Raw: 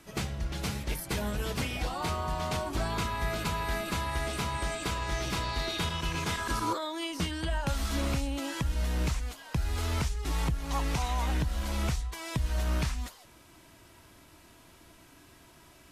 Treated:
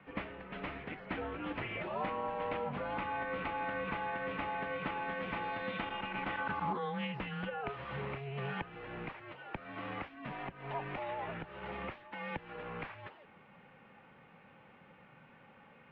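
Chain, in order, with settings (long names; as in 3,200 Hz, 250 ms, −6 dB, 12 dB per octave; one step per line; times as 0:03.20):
downward compressor, threshold −30 dBFS, peak gain reduction 6 dB
single-sideband voice off tune −140 Hz 280–2,800 Hz
highs frequency-modulated by the lows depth 0.15 ms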